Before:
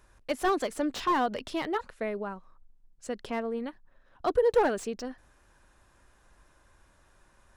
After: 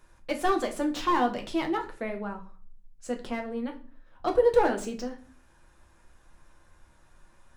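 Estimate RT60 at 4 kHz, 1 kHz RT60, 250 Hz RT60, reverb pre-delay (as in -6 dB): 0.35 s, 0.40 s, 0.60 s, 6 ms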